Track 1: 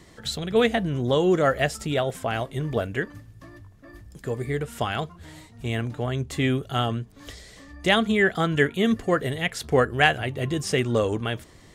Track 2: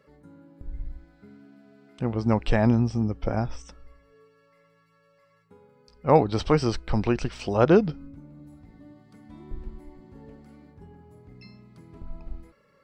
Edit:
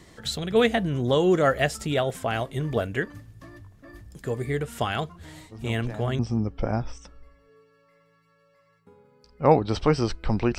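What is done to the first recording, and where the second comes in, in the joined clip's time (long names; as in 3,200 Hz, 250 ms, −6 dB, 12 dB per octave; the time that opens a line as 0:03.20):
track 1
0:05.51: mix in track 2 from 0:02.15 0.68 s −16.5 dB
0:06.19: continue with track 2 from 0:02.83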